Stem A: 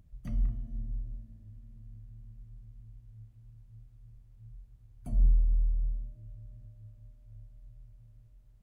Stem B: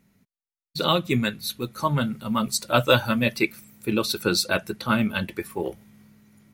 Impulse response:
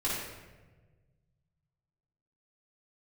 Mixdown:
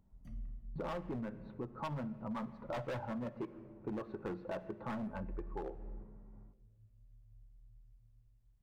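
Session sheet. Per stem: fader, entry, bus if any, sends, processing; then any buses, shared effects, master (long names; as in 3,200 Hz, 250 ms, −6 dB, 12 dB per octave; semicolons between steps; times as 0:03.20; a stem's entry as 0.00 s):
−13.0 dB, 0.00 s, send −16.5 dB, automatic ducking −12 dB, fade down 1.95 s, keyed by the second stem
−4.0 dB, 0.00 s, send −22.5 dB, transistor ladder low-pass 1,100 Hz, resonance 40%; automatic gain control gain up to 6.5 dB; gain into a clipping stage and back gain 23 dB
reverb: on, RT60 1.3 s, pre-delay 3 ms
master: downward compressor 5 to 1, threshold −39 dBFS, peak gain reduction 10.5 dB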